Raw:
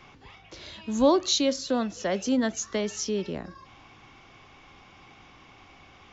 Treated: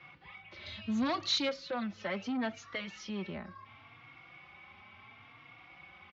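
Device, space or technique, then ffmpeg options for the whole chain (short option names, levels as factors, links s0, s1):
barber-pole flanger into a guitar amplifier: -filter_complex "[0:a]asplit=2[s0][s1];[s1]adelay=3.7,afreqshift=0.71[s2];[s0][s2]amix=inputs=2:normalize=1,asoftclip=type=tanh:threshold=0.0596,highpass=90,equalizer=f=97:t=q:w=4:g=5,equalizer=f=290:t=q:w=4:g=-5,equalizer=f=420:t=q:w=4:g=-7,equalizer=f=1300:t=q:w=4:g=4,equalizer=f=2200:t=q:w=4:g=8,lowpass=f=4100:w=0.5412,lowpass=f=4100:w=1.3066,asettb=1/sr,asplit=3[s3][s4][s5];[s3]atrim=end=0.664[s6];[s4]atrim=start=0.66:end=1.49,asetpts=PTS-STARTPTS,afade=t=in:d=0.004:c=qsin,afade=t=out:st=0.826:d=0.004:c=qsin,bass=f=250:g=7,treble=f=4000:g=12[s7];[s5]atrim=start=1.486[s8];[s6][s7]acrossfade=d=0.004:c1=hsin:c2=qsin[s9];[s9][s8]acrossfade=d=0.004:c1=qsin:c2=hsin,volume=0.75"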